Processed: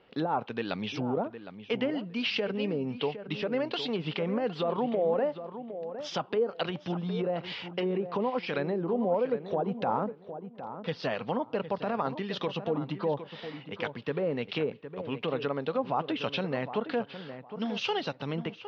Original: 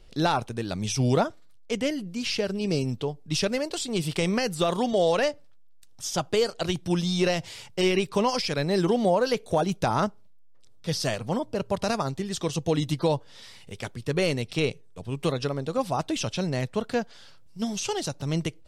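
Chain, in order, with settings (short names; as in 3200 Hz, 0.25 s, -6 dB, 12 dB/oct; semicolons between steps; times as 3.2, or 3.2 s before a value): low-pass opened by the level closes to 1600 Hz, open at -19.5 dBFS; de-esser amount 95%; treble ducked by the level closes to 650 Hz, closed at -20 dBFS; in parallel at 0 dB: compressor, threshold -33 dBFS, peak gain reduction 13.5 dB; on the sum: limiter -16.5 dBFS, peak gain reduction 5.5 dB; speaker cabinet 280–4900 Hz, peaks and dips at 350 Hz -7 dB, 630 Hz -5 dB, 2900 Hz +4 dB; on a send: darkening echo 0.761 s, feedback 23%, low-pass 1800 Hz, level -10.5 dB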